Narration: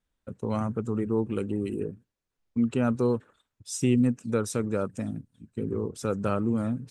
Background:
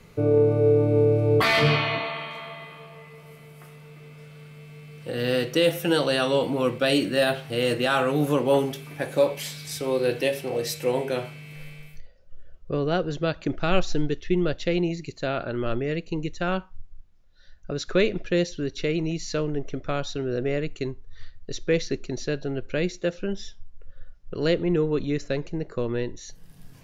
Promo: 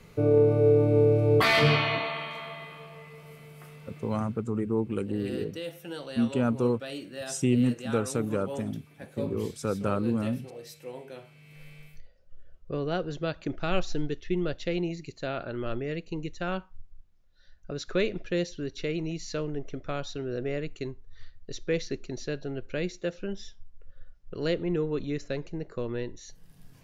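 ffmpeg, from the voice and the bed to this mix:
-filter_complex "[0:a]adelay=3600,volume=0.891[s0];[1:a]volume=2.99,afade=t=out:st=4.01:d=0.44:silence=0.177828,afade=t=in:st=11.26:d=0.56:silence=0.281838[s1];[s0][s1]amix=inputs=2:normalize=0"

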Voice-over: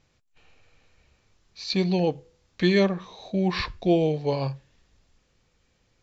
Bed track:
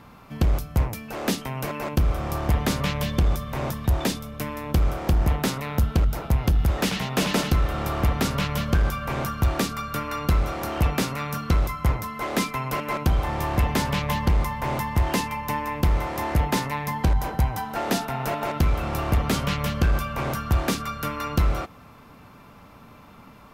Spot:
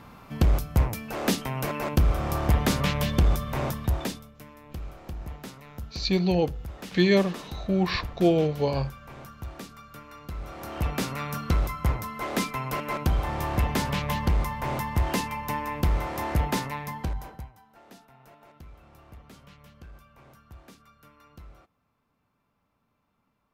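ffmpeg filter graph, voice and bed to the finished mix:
-filter_complex "[0:a]adelay=4350,volume=1[s0];[1:a]volume=4.73,afade=t=out:st=3.58:d=0.77:silence=0.149624,afade=t=in:st=10.33:d=0.84:silence=0.211349,afade=t=out:st=16.48:d=1.05:silence=0.0668344[s1];[s0][s1]amix=inputs=2:normalize=0"

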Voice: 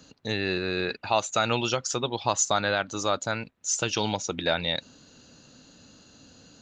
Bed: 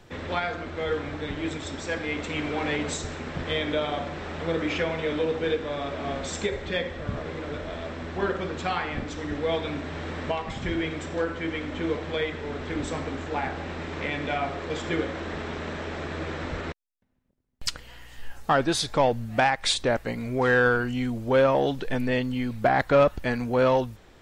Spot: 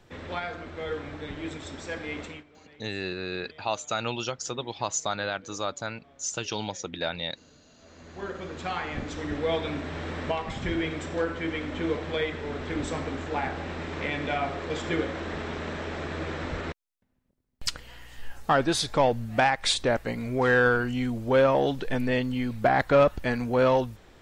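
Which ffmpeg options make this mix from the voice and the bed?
-filter_complex "[0:a]adelay=2550,volume=0.562[s0];[1:a]volume=12.6,afade=t=out:st=2.22:d=0.22:silence=0.0749894,afade=t=in:st=7.77:d=1.43:silence=0.0446684[s1];[s0][s1]amix=inputs=2:normalize=0"

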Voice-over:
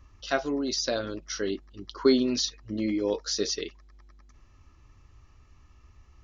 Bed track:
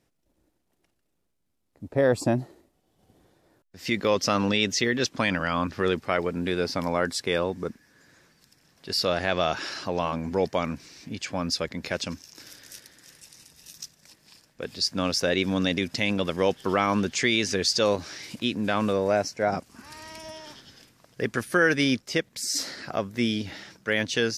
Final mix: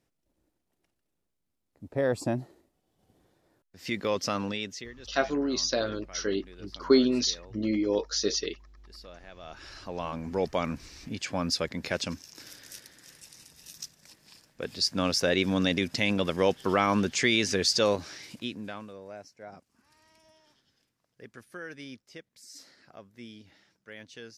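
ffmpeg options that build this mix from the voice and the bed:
-filter_complex "[0:a]adelay=4850,volume=1.06[s0];[1:a]volume=7.08,afade=t=out:st=4.26:d=0.68:silence=0.125893,afade=t=in:st=9.4:d=1.43:silence=0.0749894,afade=t=out:st=17.76:d=1.11:silence=0.105925[s1];[s0][s1]amix=inputs=2:normalize=0"

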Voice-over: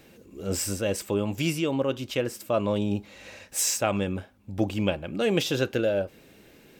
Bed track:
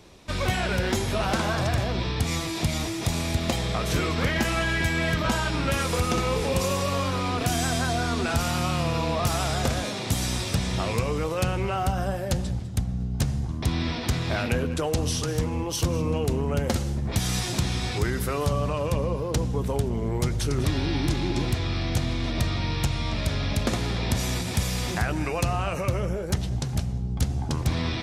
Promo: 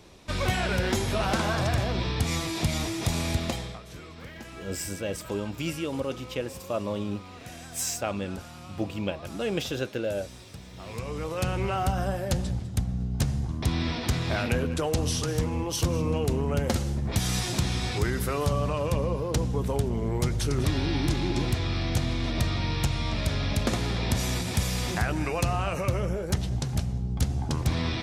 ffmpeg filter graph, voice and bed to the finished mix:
-filter_complex "[0:a]adelay=4200,volume=0.562[s0];[1:a]volume=6.68,afade=t=out:st=3.32:d=0.49:silence=0.133352,afade=t=in:st=10.75:d=0.9:silence=0.133352[s1];[s0][s1]amix=inputs=2:normalize=0"

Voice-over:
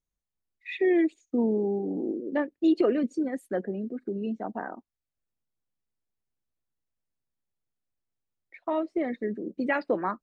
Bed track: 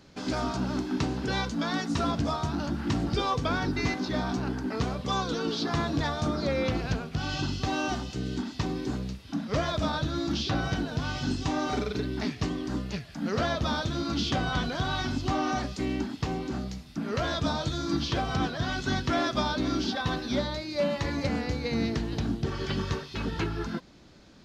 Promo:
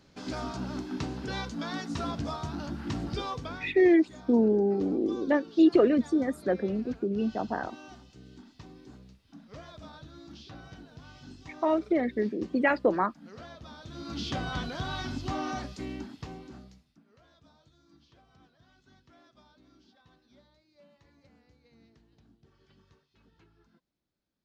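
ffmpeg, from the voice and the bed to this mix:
-filter_complex "[0:a]adelay=2950,volume=1.33[s0];[1:a]volume=2.51,afade=t=out:st=3.16:d=0.59:silence=0.223872,afade=t=in:st=13.79:d=0.52:silence=0.211349,afade=t=out:st=15.44:d=1.6:silence=0.0398107[s1];[s0][s1]amix=inputs=2:normalize=0"

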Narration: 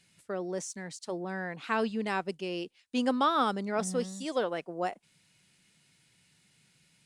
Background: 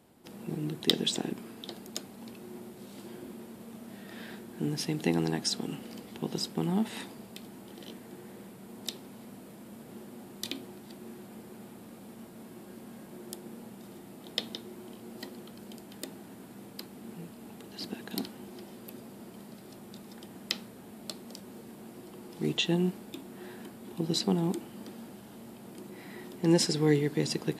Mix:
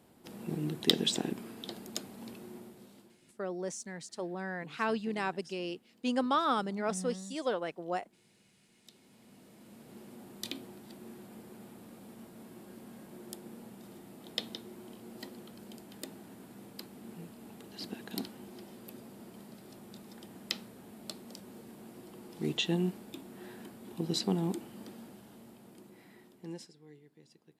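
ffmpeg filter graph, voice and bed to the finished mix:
-filter_complex "[0:a]adelay=3100,volume=0.75[s0];[1:a]volume=10,afade=t=out:st=2.31:d=0.87:silence=0.0707946,afade=t=in:st=8.84:d=1.44:silence=0.0944061,afade=t=out:st=24.83:d=1.9:silence=0.0398107[s1];[s0][s1]amix=inputs=2:normalize=0"

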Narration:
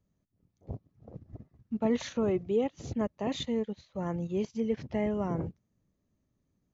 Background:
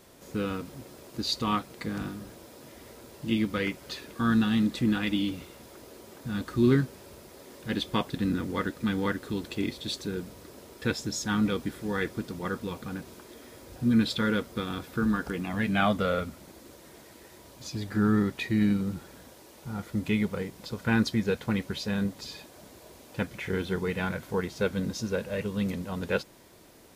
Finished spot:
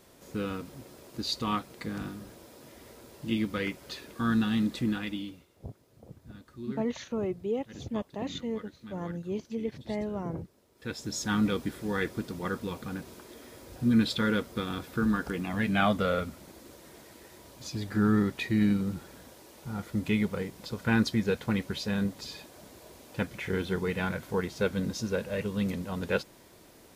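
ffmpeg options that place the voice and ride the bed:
-filter_complex "[0:a]adelay=4950,volume=0.708[s0];[1:a]volume=5.62,afade=t=out:st=4.77:d=0.69:silence=0.16788,afade=t=in:st=10.74:d=0.49:silence=0.133352[s1];[s0][s1]amix=inputs=2:normalize=0"

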